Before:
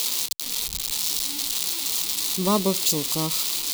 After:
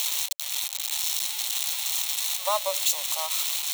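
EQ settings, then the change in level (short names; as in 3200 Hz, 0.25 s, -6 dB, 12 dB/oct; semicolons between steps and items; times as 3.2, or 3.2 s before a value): rippled Chebyshev high-pass 560 Hz, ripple 3 dB; bell 11000 Hz -2 dB 0.34 oct; notch 4800 Hz, Q 5.2; +1.5 dB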